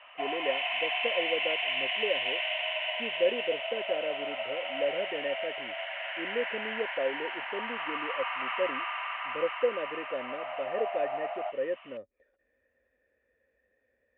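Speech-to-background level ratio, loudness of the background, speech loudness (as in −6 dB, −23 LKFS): −3.0 dB, −32.5 LKFS, −35.5 LKFS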